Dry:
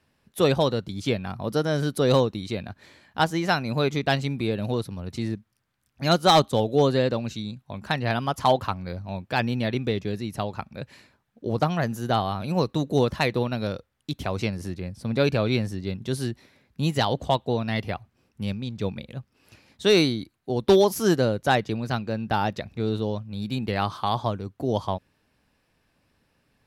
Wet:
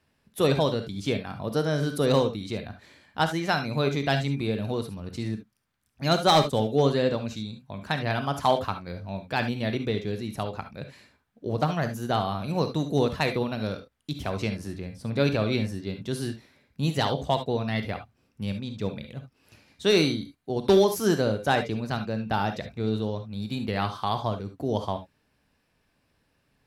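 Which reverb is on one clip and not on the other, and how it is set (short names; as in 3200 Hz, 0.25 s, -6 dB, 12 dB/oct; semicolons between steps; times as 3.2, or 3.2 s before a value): non-linear reverb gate 90 ms rising, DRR 7 dB; gain -2.5 dB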